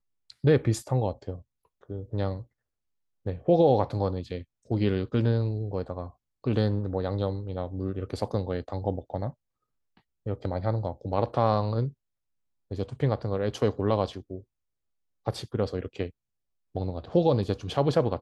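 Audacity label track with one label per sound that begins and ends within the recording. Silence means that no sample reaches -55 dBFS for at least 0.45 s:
3.260000	9.340000	sound
9.970000	11.930000	sound
12.710000	14.430000	sound
15.260000	16.110000	sound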